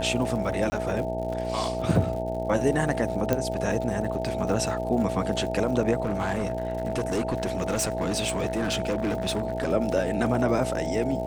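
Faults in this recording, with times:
mains buzz 60 Hz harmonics 15 −32 dBFS
surface crackle 110 per second −35 dBFS
whistle 650 Hz −30 dBFS
0:00.70–0:00.72: drop-out 20 ms
0:03.33: click −10 dBFS
0:06.03–0:09.72: clipping −22 dBFS

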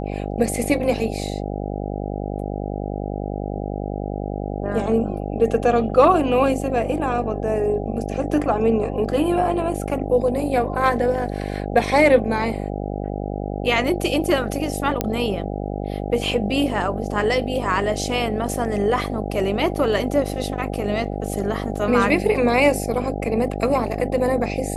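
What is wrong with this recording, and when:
mains buzz 50 Hz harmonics 16 −27 dBFS
0:15.01: click −5 dBFS

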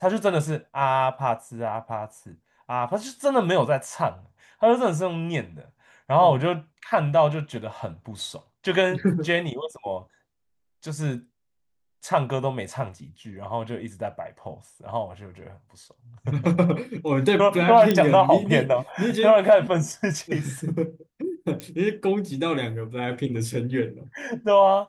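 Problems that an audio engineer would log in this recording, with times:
0:17.91: click −8 dBFS
0:21.60: click −17 dBFS

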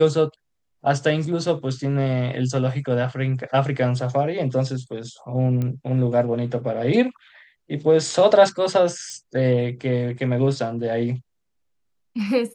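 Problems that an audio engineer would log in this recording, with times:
0:05.62: click −16 dBFS
0:09.10: click −23 dBFS

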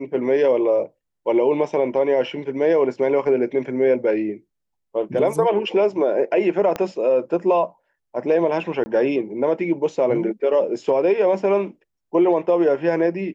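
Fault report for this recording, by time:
0:06.76: click −12 dBFS
0:08.84–0:08.86: drop-out 20 ms

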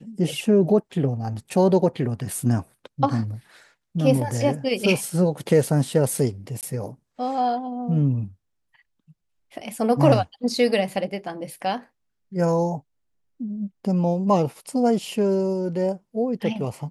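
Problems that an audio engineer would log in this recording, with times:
0:06.61–0:06.63: drop-out 18 ms

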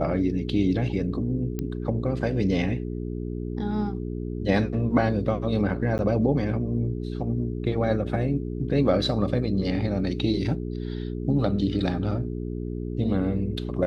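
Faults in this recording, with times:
mains hum 60 Hz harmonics 7 −31 dBFS
0:01.59: click −17 dBFS
0:05.98–0:05.99: drop-out 9.9 ms

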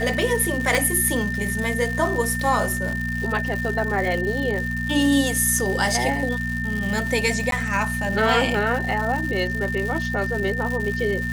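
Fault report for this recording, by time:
surface crackle 220 per second −27 dBFS
mains hum 60 Hz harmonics 4 −28 dBFS
whistle 1,800 Hz −27 dBFS
0:00.75: click
0:07.51–0:07.52: drop-out 12 ms

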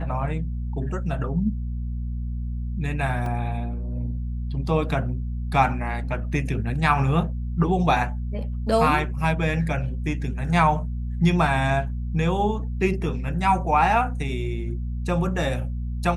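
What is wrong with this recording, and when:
mains hum 60 Hz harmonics 4 −28 dBFS
0:03.26: drop-out 2.2 ms

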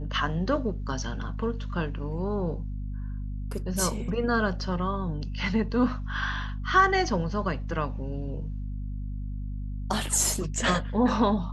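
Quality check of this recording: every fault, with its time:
mains hum 50 Hz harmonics 5 −33 dBFS

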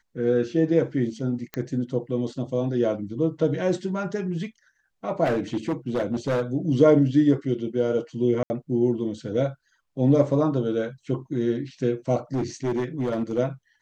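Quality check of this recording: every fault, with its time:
0:01.54: click −15 dBFS
0:05.24–0:06.42: clipping −20 dBFS
0:08.43–0:08.50: drop-out 70 ms
0:12.34–0:13.39: clipping −21 dBFS

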